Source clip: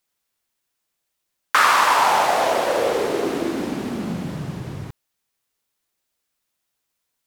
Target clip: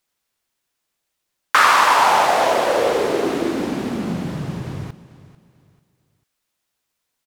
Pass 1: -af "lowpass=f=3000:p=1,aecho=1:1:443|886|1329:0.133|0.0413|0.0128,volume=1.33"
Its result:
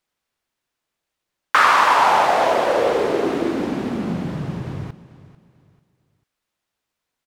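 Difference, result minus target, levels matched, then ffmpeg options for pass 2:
8 kHz band -5.5 dB
-af "lowpass=f=10000:p=1,aecho=1:1:443|886|1329:0.133|0.0413|0.0128,volume=1.33"

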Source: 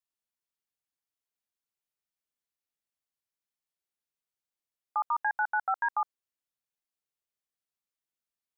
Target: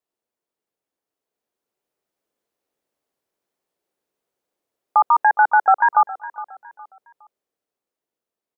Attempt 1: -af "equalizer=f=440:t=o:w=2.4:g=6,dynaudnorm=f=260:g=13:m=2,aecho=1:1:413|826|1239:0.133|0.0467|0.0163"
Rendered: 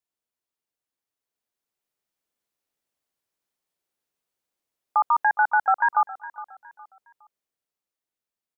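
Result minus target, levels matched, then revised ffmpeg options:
500 Hz band -3.0 dB
-af "equalizer=f=440:t=o:w=2.4:g=17.5,dynaudnorm=f=260:g=13:m=2,aecho=1:1:413|826|1239:0.133|0.0467|0.0163"

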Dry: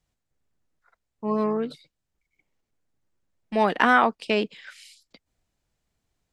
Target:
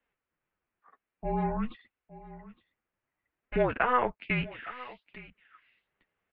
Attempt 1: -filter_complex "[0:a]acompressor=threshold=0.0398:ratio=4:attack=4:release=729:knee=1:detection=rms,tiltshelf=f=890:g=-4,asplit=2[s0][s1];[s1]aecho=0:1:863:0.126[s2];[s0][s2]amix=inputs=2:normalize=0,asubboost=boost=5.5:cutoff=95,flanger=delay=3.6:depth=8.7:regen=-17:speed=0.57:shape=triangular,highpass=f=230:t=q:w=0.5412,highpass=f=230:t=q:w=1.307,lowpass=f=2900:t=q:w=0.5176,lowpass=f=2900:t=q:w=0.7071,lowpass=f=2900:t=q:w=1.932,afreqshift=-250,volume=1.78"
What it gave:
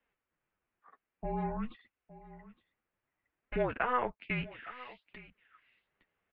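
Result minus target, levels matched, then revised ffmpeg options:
compression: peak gain reduction +5 dB
-filter_complex "[0:a]acompressor=threshold=0.0891:ratio=4:attack=4:release=729:knee=1:detection=rms,tiltshelf=f=890:g=-4,asplit=2[s0][s1];[s1]aecho=0:1:863:0.126[s2];[s0][s2]amix=inputs=2:normalize=0,asubboost=boost=5.5:cutoff=95,flanger=delay=3.6:depth=8.7:regen=-17:speed=0.57:shape=triangular,highpass=f=230:t=q:w=0.5412,highpass=f=230:t=q:w=1.307,lowpass=f=2900:t=q:w=0.5176,lowpass=f=2900:t=q:w=0.7071,lowpass=f=2900:t=q:w=1.932,afreqshift=-250,volume=1.78"

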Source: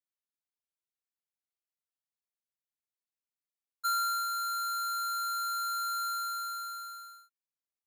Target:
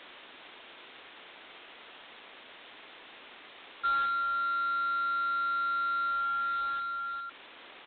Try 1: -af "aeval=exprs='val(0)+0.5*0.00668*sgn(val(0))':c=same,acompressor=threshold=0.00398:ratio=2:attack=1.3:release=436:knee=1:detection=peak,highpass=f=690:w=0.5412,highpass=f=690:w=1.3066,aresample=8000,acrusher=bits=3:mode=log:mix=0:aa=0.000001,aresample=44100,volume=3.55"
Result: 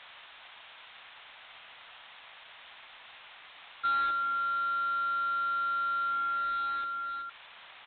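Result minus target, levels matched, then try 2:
250 Hz band -3.0 dB
-af "aeval=exprs='val(0)+0.5*0.00668*sgn(val(0))':c=same,acompressor=threshold=0.00398:ratio=2:attack=1.3:release=436:knee=1:detection=peak,highpass=f=260:w=0.5412,highpass=f=260:w=1.3066,aresample=8000,acrusher=bits=3:mode=log:mix=0:aa=0.000001,aresample=44100,volume=3.55"

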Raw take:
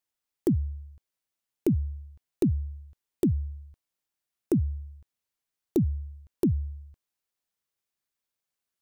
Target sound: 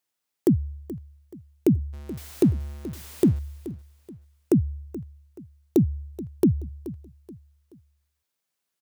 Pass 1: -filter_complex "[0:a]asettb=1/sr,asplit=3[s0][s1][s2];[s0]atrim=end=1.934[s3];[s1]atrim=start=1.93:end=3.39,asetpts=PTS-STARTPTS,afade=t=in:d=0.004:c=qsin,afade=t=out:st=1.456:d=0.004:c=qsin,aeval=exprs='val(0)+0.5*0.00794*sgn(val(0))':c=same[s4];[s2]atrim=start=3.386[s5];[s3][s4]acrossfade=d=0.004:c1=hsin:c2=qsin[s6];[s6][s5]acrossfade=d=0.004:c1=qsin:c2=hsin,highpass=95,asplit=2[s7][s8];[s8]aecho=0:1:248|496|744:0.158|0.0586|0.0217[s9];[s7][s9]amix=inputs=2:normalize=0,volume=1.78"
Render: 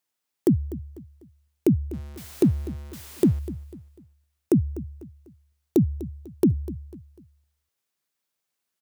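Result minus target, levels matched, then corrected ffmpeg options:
echo 180 ms early
-filter_complex "[0:a]asettb=1/sr,asplit=3[s0][s1][s2];[s0]atrim=end=1.934[s3];[s1]atrim=start=1.93:end=3.39,asetpts=PTS-STARTPTS,afade=t=in:d=0.004:c=qsin,afade=t=out:st=1.456:d=0.004:c=qsin,aeval=exprs='val(0)+0.5*0.00794*sgn(val(0))':c=same[s4];[s2]atrim=start=3.386[s5];[s3][s4]acrossfade=d=0.004:c1=hsin:c2=qsin[s6];[s6][s5]acrossfade=d=0.004:c1=qsin:c2=hsin,highpass=95,asplit=2[s7][s8];[s8]aecho=0:1:428|856|1284:0.158|0.0586|0.0217[s9];[s7][s9]amix=inputs=2:normalize=0,volume=1.78"

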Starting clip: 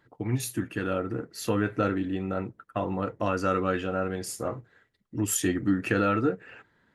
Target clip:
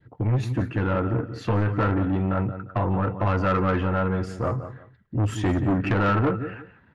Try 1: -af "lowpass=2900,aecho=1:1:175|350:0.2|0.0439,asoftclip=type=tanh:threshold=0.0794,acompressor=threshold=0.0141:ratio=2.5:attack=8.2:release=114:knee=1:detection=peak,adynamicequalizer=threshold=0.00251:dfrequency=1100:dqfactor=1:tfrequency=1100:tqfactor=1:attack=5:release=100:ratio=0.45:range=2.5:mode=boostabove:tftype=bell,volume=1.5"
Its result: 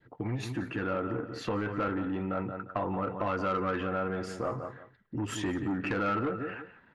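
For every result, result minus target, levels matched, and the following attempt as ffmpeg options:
compression: peak gain reduction +8.5 dB; 125 Hz band -6.0 dB
-af "lowpass=2900,aecho=1:1:175|350:0.2|0.0439,asoftclip=type=tanh:threshold=0.0794,adynamicequalizer=threshold=0.00251:dfrequency=1100:dqfactor=1:tfrequency=1100:tqfactor=1:attack=5:release=100:ratio=0.45:range=2.5:mode=boostabove:tftype=bell,volume=1.5"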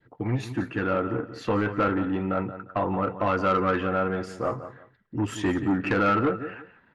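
125 Hz band -7.0 dB
-af "lowpass=2900,equalizer=f=87:t=o:w=2.1:g=13.5,aecho=1:1:175|350:0.2|0.0439,asoftclip=type=tanh:threshold=0.0794,adynamicequalizer=threshold=0.00251:dfrequency=1100:dqfactor=1:tfrequency=1100:tqfactor=1:attack=5:release=100:ratio=0.45:range=2.5:mode=boostabove:tftype=bell,volume=1.5"

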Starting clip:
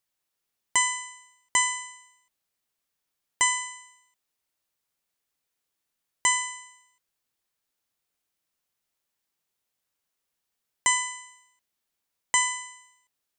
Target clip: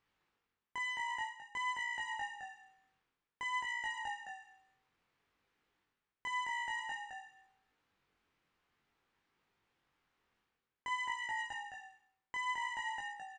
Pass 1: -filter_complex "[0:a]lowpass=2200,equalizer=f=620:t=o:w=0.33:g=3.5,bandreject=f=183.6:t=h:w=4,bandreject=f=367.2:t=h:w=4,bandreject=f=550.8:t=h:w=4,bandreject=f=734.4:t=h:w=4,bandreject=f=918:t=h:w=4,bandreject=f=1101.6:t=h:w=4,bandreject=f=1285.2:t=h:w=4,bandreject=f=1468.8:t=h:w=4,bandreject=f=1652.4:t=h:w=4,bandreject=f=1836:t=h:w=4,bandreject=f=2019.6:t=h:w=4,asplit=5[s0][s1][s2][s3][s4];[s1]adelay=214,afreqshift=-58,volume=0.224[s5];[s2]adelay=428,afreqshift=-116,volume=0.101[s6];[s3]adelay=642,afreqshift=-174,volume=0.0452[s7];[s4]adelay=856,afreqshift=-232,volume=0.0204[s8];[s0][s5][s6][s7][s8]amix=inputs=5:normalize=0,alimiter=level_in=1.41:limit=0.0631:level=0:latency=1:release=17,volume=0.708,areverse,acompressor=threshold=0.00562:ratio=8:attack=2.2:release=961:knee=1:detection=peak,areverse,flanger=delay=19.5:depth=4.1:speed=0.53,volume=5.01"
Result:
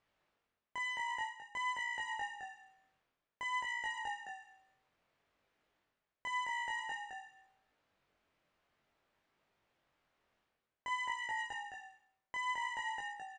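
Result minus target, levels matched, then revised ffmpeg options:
500 Hz band +3.5 dB
-filter_complex "[0:a]lowpass=2200,equalizer=f=620:t=o:w=0.33:g=-7.5,bandreject=f=183.6:t=h:w=4,bandreject=f=367.2:t=h:w=4,bandreject=f=550.8:t=h:w=4,bandreject=f=734.4:t=h:w=4,bandreject=f=918:t=h:w=4,bandreject=f=1101.6:t=h:w=4,bandreject=f=1285.2:t=h:w=4,bandreject=f=1468.8:t=h:w=4,bandreject=f=1652.4:t=h:w=4,bandreject=f=1836:t=h:w=4,bandreject=f=2019.6:t=h:w=4,asplit=5[s0][s1][s2][s3][s4];[s1]adelay=214,afreqshift=-58,volume=0.224[s5];[s2]adelay=428,afreqshift=-116,volume=0.101[s6];[s3]adelay=642,afreqshift=-174,volume=0.0452[s7];[s4]adelay=856,afreqshift=-232,volume=0.0204[s8];[s0][s5][s6][s7][s8]amix=inputs=5:normalize=0,alimiter=level_in=1.41:limit=0.0631:level=0:latency=1:release=17,volume=0.708,areverse,acompressor=threshold=0.00562:ratio=8:attack=2.2:release=961:knee=1:detection=peak,areverse,flanger=delay=19.5:depth=4.1:speed=0.53,volume=5.01"

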